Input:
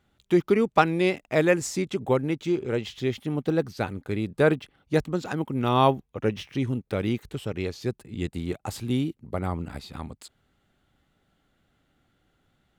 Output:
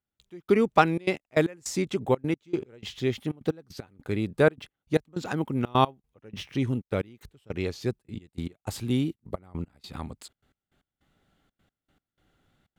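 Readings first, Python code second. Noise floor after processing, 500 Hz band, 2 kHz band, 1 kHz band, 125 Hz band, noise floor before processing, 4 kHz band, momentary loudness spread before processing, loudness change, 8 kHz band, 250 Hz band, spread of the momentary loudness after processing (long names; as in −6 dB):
below −85 dBFS, −2.5 dB, −2.0 dB, −1.5 dB, −2.5 dB, −72 dBFS, −1.5 dB, 12 LU, −1.5 dB, −2.0 dB, −2.5 dB, 17 LU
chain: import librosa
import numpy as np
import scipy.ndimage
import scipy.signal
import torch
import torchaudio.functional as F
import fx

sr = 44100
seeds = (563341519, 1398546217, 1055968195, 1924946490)

y = fx.step_gate(x, sr, bpm=154, pattern='..x..xxxxx.x', floor_db=-24.0, edge_ms=4.5)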